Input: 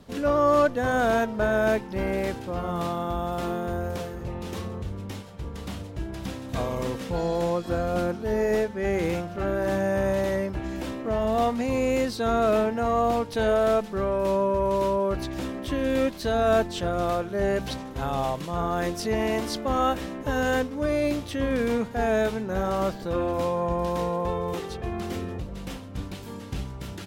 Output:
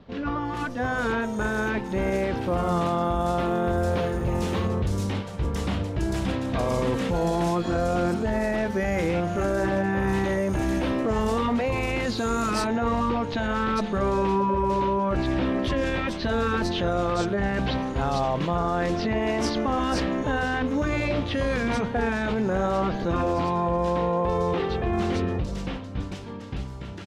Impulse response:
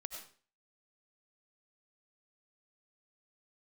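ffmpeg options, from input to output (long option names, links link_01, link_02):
-filter_complex "[0:a]asetnsamples=nb_out_samples=441:pad=0,asendcmd='12.22 lowpass f 5200',lowpass=9700,afftfilt=real='re*lt(hypot(re,im),0.447)':imag='im*lt(hypot(re,im),0.447)':win_size=1024:overlap=0.75,dynaudnorm=framelen=170:gausssize=21:maxgain=9dB,alimiter=limit=-17dB:level=0:latency=1:release=17,acrossover=split=4400[link_01][link_02];[link_02]adelay=450[link_03];[link_01][link_03]amix=inputs=2:normalize=0"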